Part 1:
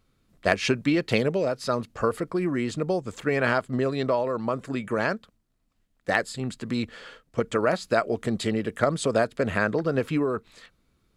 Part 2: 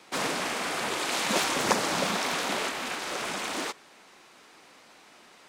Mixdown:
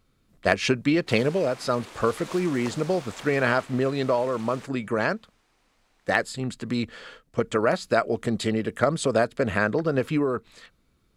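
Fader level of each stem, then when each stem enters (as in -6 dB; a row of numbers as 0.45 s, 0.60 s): +1.0 dB, -14.5 dB; 0.00 s, 0.95 s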